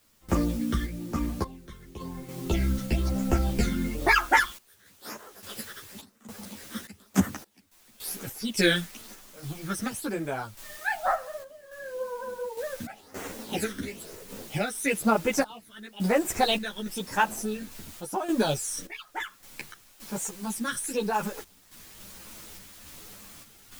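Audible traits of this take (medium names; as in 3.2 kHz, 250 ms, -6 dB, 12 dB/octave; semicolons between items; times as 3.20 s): phasing stages 12, 1 Hz, lowest notch 790–4300 Hz; a quantiser's noise floor 8-bit, dither triangular; random-step tremolo, depth 95%; a shimmering, thickened sound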